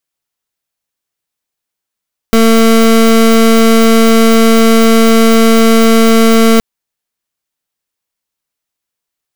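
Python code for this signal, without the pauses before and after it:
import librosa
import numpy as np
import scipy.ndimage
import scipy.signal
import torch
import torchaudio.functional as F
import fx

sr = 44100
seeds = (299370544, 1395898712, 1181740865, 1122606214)

y = fx.pulse(sr, length_s=4.27, hz=226.0, level_db=-6.0, duty_pct=26)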